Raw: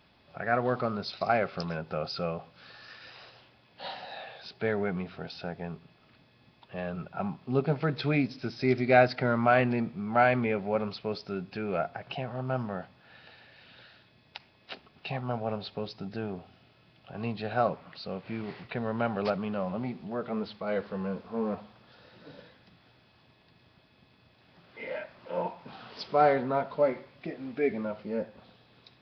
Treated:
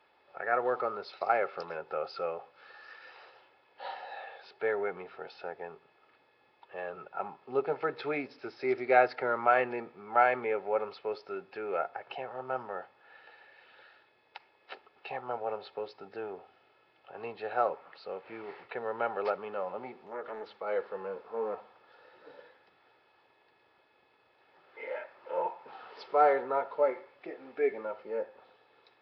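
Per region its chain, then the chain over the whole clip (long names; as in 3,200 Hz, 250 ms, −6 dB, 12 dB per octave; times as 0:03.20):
0:20.06–0:20.61: downward compressor 2 to 1, threshold −34 dBFS + highs frequency-modulated by the lows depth 0.51 ms
whole clip: three-way crossover with the lows and the highs turned down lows −23 dB, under 360 Hz, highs −13 dB, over 2,300 Hz; comb filter 2.3 ms, depth 40%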